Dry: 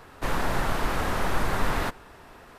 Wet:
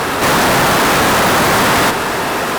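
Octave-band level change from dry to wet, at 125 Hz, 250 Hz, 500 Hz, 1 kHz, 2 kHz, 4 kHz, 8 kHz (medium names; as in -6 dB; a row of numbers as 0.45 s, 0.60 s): +11.5 dB, +16.5 dB, +17.5 dB, +17.5 dB, +18.5 dB, +21.0 dB, +22.5 dB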